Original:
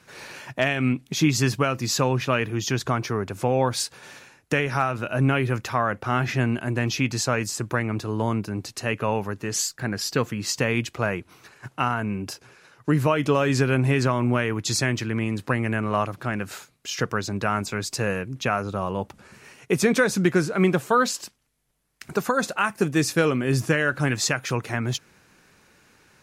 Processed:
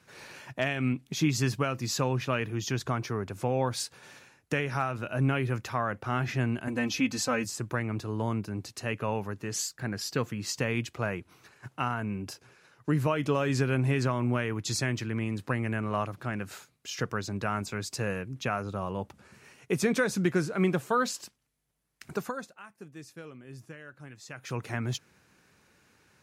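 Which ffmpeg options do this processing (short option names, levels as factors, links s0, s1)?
-filter_complex "[0:a]asettb=1/sr,asplit=3[s0][s1][s2];[s0]atrim=end=6.674[s3];[s1]atrim=start=6.67:end=7.45,asetpts=PTS-STARTPTS,afade=t=in:d=0.004:c=qsin,afade=t=out:st=0.776:d=0.004:c=qsin,aecho=1:1:3.9:0.86,atrim=end_sample=34398[s4];[s2]atrim=start=7.446[s5];[s3][s4]acrossfade=d=0.004:c1=hsin:c2=qsin[s6];[s6][s5]acrossfade=d=0.004:c1=qsin:c2=hsin,asplit=3[s7][s8][s9];[s7]atrim=end=22.5,asetpts=PTS-STARTPTS,afade=t=out:st=22.11:d=0.39:silence=0.125893[s10];[s8]atrim=start=22.5:end=24.27,asetpts=PTS-STARTPTS,volume=0.126[s11];[s9]atrim=start=24.27,asetpts=PTS-STARTPTS,afade=t=in:d=0.39:silence=0.125893[s12];[s10][s11][s12]concat=n=3:v=0:a=1,highpass=53,lowshelf=f=140:g=4,volume=0.447"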